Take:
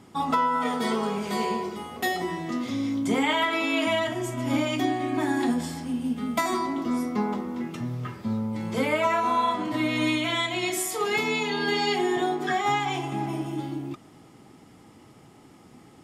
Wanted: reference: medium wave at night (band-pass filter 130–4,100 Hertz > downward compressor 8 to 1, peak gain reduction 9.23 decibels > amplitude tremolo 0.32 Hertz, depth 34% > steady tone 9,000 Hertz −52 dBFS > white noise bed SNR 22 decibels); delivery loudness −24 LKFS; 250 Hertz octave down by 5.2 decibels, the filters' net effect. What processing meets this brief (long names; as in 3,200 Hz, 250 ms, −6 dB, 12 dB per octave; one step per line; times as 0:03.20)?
band-pass filter 130–4,100 Hz
parametric band 250 Hz −6 dB
downward compressor 8 to 1, threshold −28 dBFS
amplitude tremolo 0.32 Hz, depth 34%
steady tone 9,000 Hz −52 dBFS
white noise bed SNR 22 dB
level +10 dB